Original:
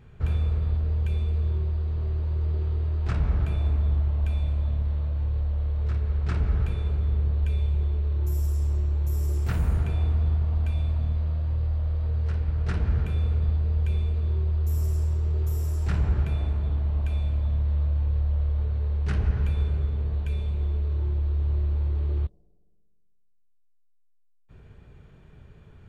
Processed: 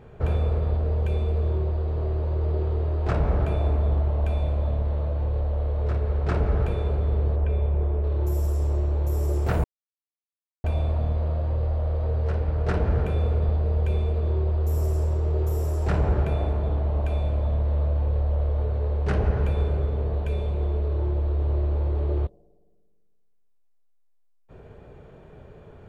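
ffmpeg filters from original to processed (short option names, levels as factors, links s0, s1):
-filter_complex "[0:a]asettb=1/sr,asplit=3[s0][s1][s2];[s0]atrim=end=7.364[s3];[s1]atrim=start=7.36:end=8.04,asetpts=PTS-STARTPTS,afade=t=in:d=0.004:c=qsin,afade=t=out:st=0.676:d=0.004:c=qsin,lowpass=2200[s4];[s2]atrim=start=8.036[s5];[s3][s4]acrossfade=d=0.004:c1=hsin:c2=qsin[s6];[s6][s5]acrossfade=d=0.004:c1=qsin:c2=hsin,asplit=3[s7][s8][s9];[s7]atrim=end=9.64,asetpts=PTS-STARTPTS,afade=t=out:st=9.636:d=0.004:c=hsin[s10];[s8]atrim=start=9.64:end=10.64,asetpts=PTS-STARTPTS,volume=0[s11];[s9]atrim=start=10.64,asetpts=PTS-STARTPTS,afade=t=in:d=0.004:c=hsin[s12];[s10][s11][s12]concat=n=3:v=0:a=1,equalizer=f=570:w=0.7:g=14.5"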